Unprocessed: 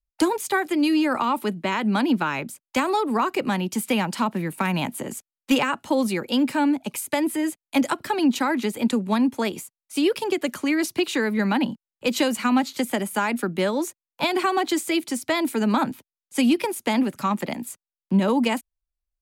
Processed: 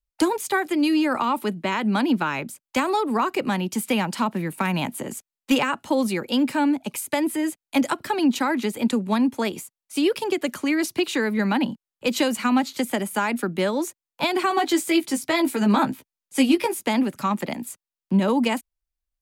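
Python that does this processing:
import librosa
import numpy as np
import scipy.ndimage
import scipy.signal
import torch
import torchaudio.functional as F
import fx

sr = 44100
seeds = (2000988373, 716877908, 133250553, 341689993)

y = fx.doubler(x, sr, ms=15.0, db=-4.0, at=(14.49, 16.83))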